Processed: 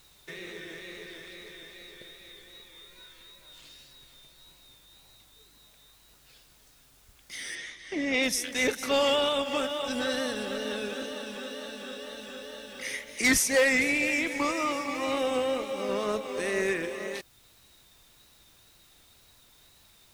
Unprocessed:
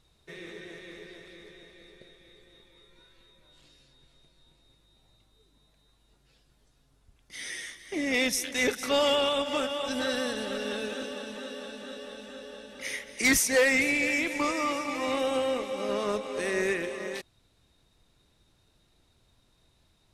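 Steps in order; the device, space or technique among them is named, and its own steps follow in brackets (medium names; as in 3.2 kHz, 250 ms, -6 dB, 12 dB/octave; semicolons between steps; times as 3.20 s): noise-reduction cassette on a plain deck (tape noise reduction on one side only encoder only; wow and flutter; white noise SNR 30 dB); 7.55–8.23 s: low-pass 5.5 kHz 12 dB/octave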